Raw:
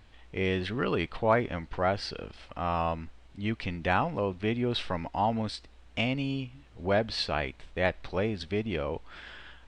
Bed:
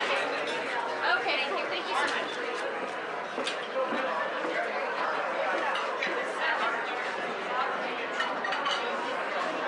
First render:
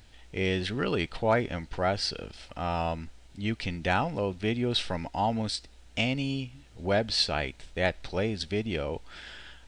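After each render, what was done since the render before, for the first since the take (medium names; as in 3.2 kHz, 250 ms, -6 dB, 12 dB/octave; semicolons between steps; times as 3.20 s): tone controls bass +1 dB, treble +11 dB; band-stop 1.1 kHz, Q 6.3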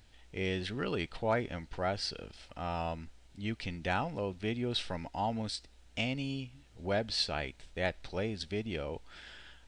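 trim -6 dB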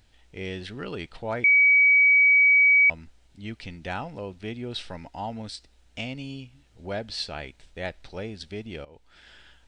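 1.44–2.90 s: bleep 2.27 kHz -14 dBFS; 8.85–9.36 s: fade in, from -16.5 dB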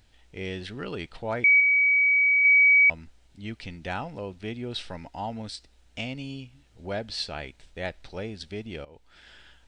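1.60–2.45 s: tilt EQ -3 dB/octave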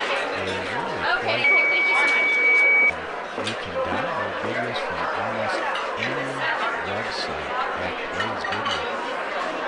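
add bed +4 dB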